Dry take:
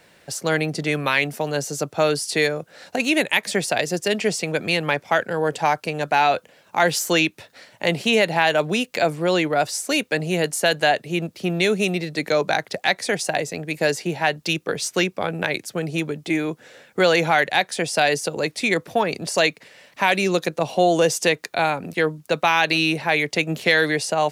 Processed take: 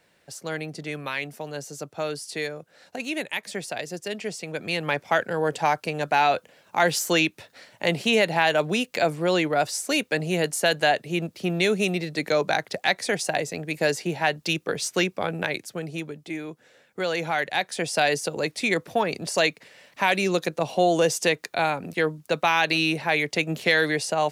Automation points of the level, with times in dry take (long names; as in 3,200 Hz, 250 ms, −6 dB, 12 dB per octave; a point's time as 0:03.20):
0:04.41 −10 dB
0:05.01 −2.5 dB
0:15.33 −2.5 dB
0:16.29 −10.5 dB
0:16.99 −10.5 dB
0:17.91 −3 dB